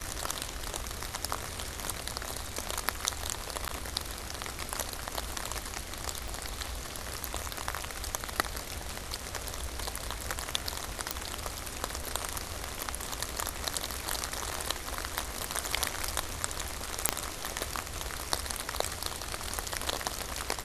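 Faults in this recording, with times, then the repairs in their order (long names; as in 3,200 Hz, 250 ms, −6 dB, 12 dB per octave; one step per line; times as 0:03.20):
0:03.68–0:03.69: drop-out 9.9 ms
0:06.28: click
0:11.11: click
0:17.09: click −4 dBFS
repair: click removal
repair the gap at 0:03.68, 9.9 ms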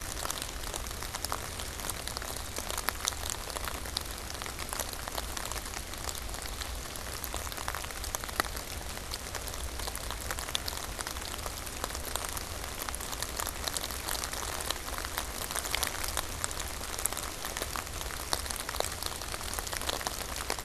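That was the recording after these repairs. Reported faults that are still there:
0:06.28: click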